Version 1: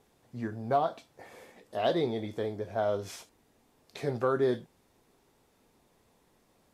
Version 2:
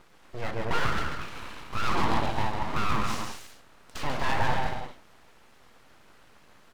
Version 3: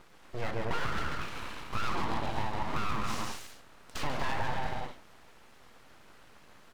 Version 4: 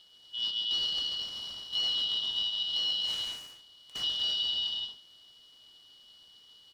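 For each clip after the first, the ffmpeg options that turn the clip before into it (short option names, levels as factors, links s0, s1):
-filter_complex "[0:a]asplit=2[s0][s1];[s1]highpass=f=720:p=1,volume=14.1,asoftclip=type=tanh:threshold=0.158[s2];[s0][s2]amix=inputs=2:normalize=0,lowpass=f=1600:p=1,volume=0.501,aecho=1:1:140|238|306.6|354.6|388.2:0.631|0.398|0.251|0.158|0.1,aeval=exprs='abs(val(0))':c=same"
-af "acompressor=threshold=0.0501:ratio=6"
-af "afftfilt=real='real(if(lt(b,272),68*(eq(floor(b/68),0)*2+eq(floor(b/68),1)*3+eq(floor(b/68),2)*0+eq(floor(b/68),3)*1)+mod(b,68),b),0)':imag='imag(if(lt(b,272),68*(eq(floor(b/68),0)*2+eq(floor(b/68),1)*3+eq(floor(b/68),2)*0+eq(floor(b/68),3)*1)+mod(b,68),b),0)':win_size=2048:overlap=0.75,volume=0.631"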